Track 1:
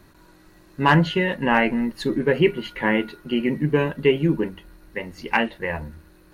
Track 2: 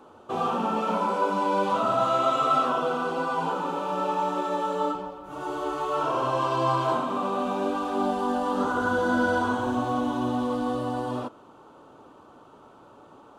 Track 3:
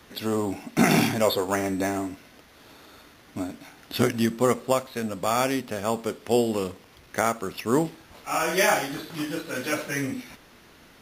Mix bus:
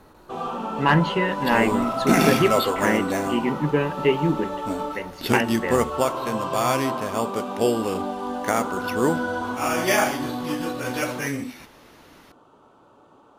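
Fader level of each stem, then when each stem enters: −2.0, −3.0, +0.5 decibels; 0.00, 0.00, 1.30 seconds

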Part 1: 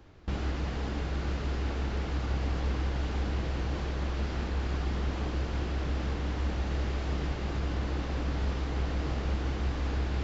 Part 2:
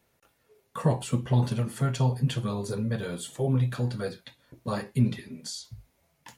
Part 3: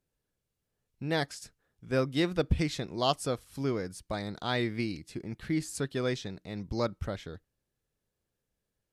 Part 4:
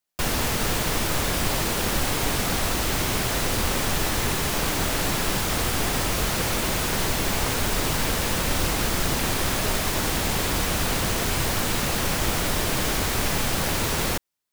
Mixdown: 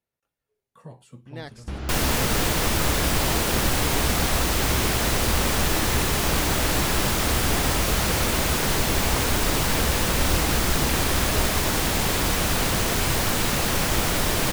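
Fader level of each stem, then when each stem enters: 0.0, −18.5, −8.5, +1.5 decibels; 1.40, 0.00, 0.25, 1.70 seconds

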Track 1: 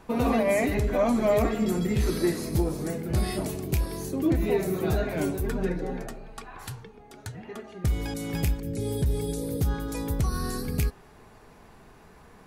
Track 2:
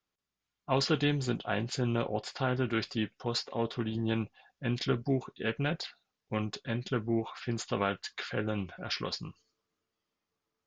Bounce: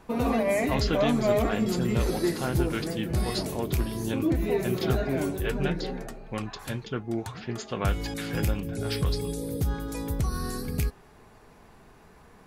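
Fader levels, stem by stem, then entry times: −1.5, −0.5 decibels; 0.00, 0.00 seconds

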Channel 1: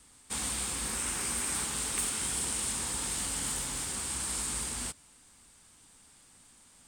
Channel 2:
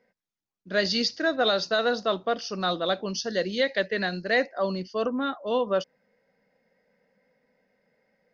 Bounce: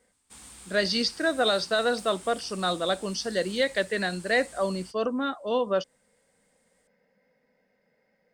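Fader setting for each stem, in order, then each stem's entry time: −14.0, −0.5 decibels; 0.00, 0.00 seconds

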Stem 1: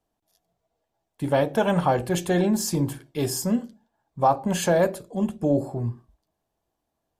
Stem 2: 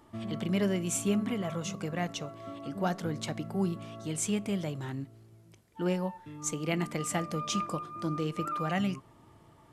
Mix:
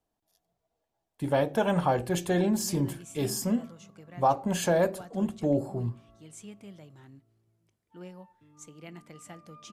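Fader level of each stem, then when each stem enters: −4.0, −15.0 decibels; 0.00, 2.15 seconds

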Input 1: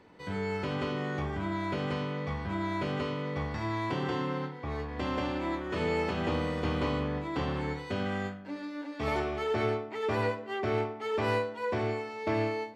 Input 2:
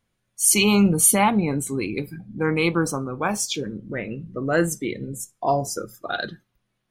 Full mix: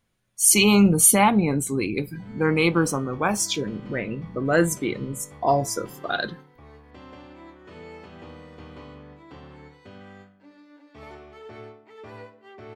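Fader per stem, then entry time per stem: −12.5, +1.0 decibels; 1.95, 0.00 seconds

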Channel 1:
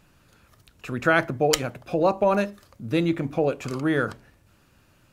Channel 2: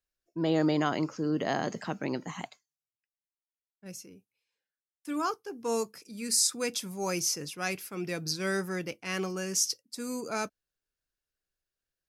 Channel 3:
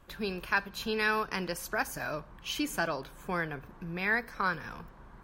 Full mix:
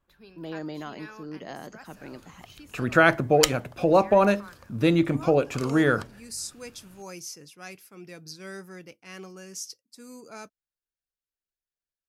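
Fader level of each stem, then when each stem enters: +2.0, −9.5, −17.0 decibels; 1.90, 0.00, 0.00 seconds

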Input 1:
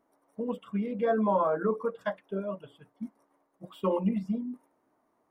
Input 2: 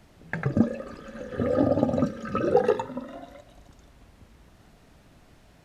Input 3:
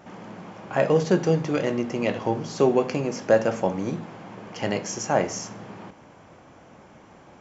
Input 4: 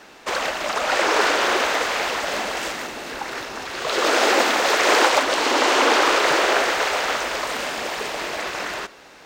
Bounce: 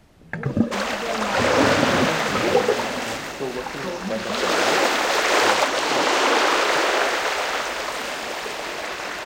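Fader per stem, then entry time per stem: −3.5, +1.5, −10.0, −1.5 decibels; 0.00, 0.00, 0.80, 0.45 seconds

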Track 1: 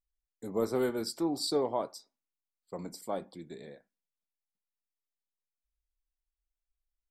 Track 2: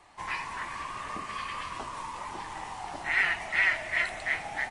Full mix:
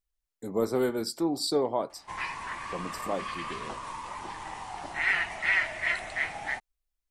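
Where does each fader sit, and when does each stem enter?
+3.0, −0.5 decibels; 0.00, 1.90 seconds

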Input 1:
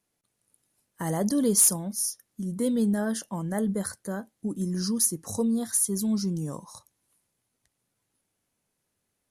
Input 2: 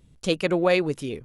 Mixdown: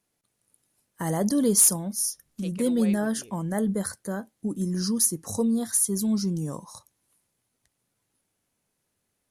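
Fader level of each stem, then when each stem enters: +1.5, −18.5 decibels; 0.00, 2.15 seconds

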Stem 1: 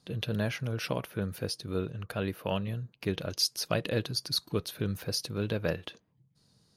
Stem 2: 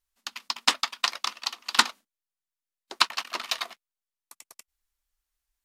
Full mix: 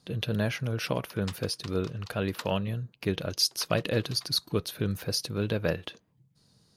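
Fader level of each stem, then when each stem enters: +2.5, −20.0 decibels; 0.00, 0.60 seconds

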